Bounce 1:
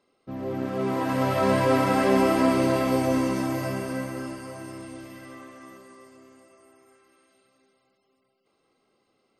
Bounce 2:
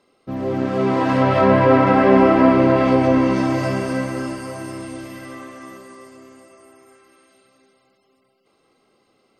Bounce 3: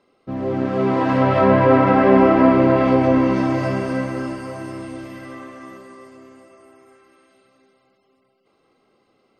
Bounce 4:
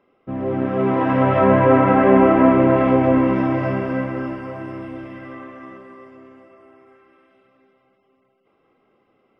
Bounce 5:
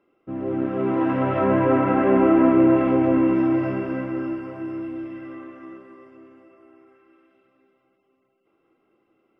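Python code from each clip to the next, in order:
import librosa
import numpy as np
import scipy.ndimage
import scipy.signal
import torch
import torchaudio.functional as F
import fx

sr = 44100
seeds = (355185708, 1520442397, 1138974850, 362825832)

y1 = fx.env_lowpass_down(x, sr, base_hz=2300.0, full_db=-18.0)
y1 = y1 * 10.0 ** (8.0 / 20.0)
y2 = fx.high_shelf(y1, sr, hz=5300.0, db=-10.5)
y3 = scipy.signal.savgol_filter(y2, 25, 4, mode='constant')
y4 = fx.small_body(y3, sr, hz=(330.0, 1400.0, 2700.0), ring_ms=65, db=11)
y4 = y4 * 10.0 ** (-7.0 / 20.0)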